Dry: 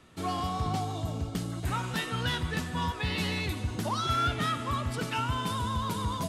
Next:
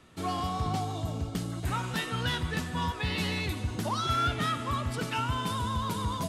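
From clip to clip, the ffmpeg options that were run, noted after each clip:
-af anull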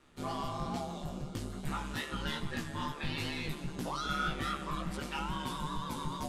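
-af "aeval=exprs='val(0)*sin(2*PI*73*n/s)':c=same,flanger=delay=15:depth=4.3:speed=2.4"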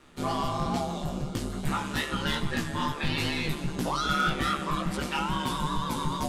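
-af "bandreject=f=50:t=h:w=6,bandreject=f=100:t=h:w=6,aeval=exprs='0.0562*(abs(mod(val(0)/0.0562+3,4)-2)-1)':c=same,volume=2.51"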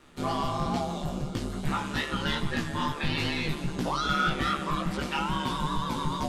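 -filter_complex "[0:a]acrossover=split=6200[s0][s1];[s1]acompressor=threshold=0.00282:ratio=4:attack=1:release=60[s2];[s0][s2]amix=inputs=2:normalize=0"

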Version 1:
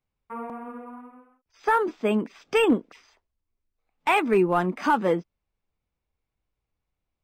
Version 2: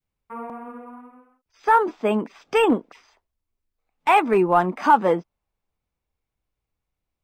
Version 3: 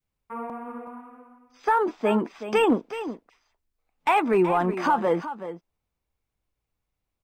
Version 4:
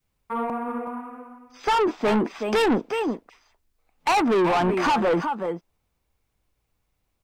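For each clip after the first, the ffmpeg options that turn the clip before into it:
-af "adynamicequalizer=threshold=0.0158:dfrequency=840:dqfactor=1.1:tfrequency=840:tqfactor=1.1:attack=5:release=100:ratio=0.375:range=4:mode=boostabove:tftype=bell"
-af "alimiter=limit=0.224:level=0:latency=1:release=60,aecho=1:1:375:0.251"
-af "asoftclip=type=tanh:threshold=0.0531,volume=2.51"

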